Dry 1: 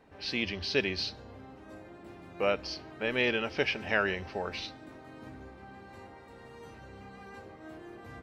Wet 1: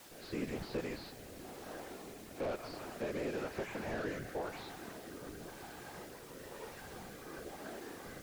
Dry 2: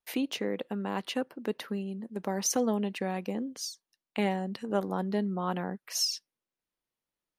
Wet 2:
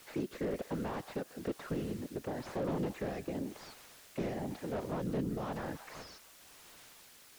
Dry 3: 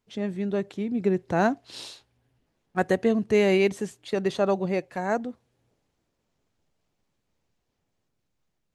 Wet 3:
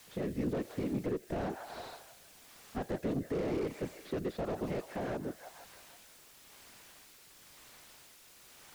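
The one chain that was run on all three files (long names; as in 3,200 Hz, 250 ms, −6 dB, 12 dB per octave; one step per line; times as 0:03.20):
running median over 15 samples
in parallel at −9 dB: bit-depth reduction 8 bits, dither triangular
on the sum: high-shelf EQ 6,000 Hz +9.5 dB
delay with a band-pass on its return 160 ms, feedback 54%, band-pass 1,300 Hz, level −18.5 dB
random phases in short frames
low-shelf EQ 360 Hz −8.5 dB
downward compressor 2 to 1, threshold −36 dBFS
rotating-speaker cabinet horn 1 Hz
slew-rate limiting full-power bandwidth 8 Hz
level +3.5 dB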